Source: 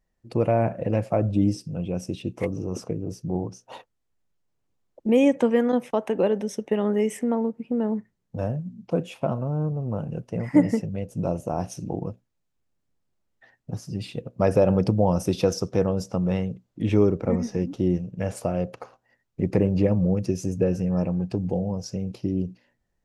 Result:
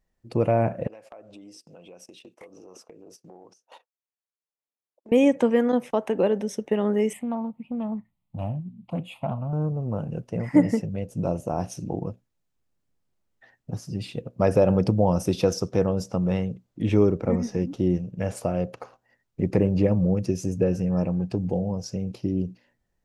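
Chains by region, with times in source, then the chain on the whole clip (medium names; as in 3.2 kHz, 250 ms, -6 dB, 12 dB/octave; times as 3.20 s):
0.87–5.12 s: gate -41 dBFS, range -15 dB + high-pass 510 Hz + compression 5:1, threshold -44 dBFS
7.13–9.53 s: static phaser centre 1.6 kHz, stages 6 + loudspeaker Doppler distortion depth 0.21 ms
whole clip: none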